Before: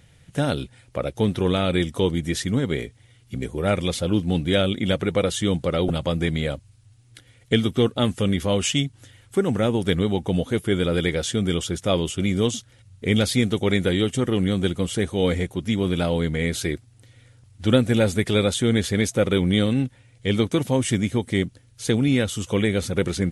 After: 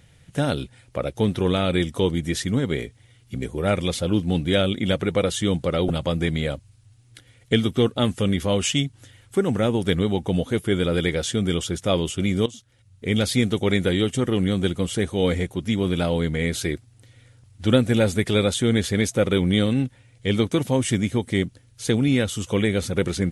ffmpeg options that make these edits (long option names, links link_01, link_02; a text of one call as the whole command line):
ffmpeg -i in.wav -filter_complex "[0:a]asplit=2[link_01][link_02];[link_01]atrim=end=12.46,asetpts=PTS-STARTPTS,afade=type=out:start_time=12.456:duration=0.004:curve=hsin:silence=0.16788[link_03];[link_02]atrim=start=12.46,asetpts=PTS-STARTPTS,afade=type=in:duration=0.9:silence=0.16788[link_04];[link_03][link_04]concat=n=2:v=0:a=1" out.wav